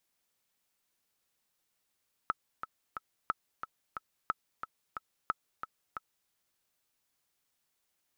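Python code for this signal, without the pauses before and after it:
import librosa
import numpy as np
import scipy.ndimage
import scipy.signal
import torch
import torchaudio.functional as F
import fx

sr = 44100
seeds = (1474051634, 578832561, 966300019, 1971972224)

y = fx.click_track(sr, bpm=180, beats=3, bars=4, hz=1300.0, accent_db=9.0, level_db=-16.0)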